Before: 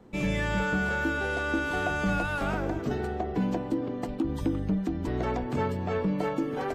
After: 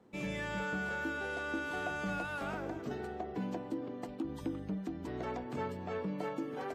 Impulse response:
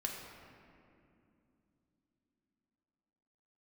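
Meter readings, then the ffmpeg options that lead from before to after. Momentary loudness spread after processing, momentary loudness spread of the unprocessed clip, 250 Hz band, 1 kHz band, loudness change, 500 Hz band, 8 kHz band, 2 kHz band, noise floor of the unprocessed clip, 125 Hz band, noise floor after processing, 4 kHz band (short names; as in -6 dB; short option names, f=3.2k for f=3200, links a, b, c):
4 LU, 4 LU, -10.0 dB, -8.0 dB, -9.0 dB, -8.5 dB, -8.0 dB, -8.0 dB, -35 dBFS, -12.5 dB, -45 dBFS, -8.0 dB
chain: -af "highpass=f=170:p=1,volume=-8dB"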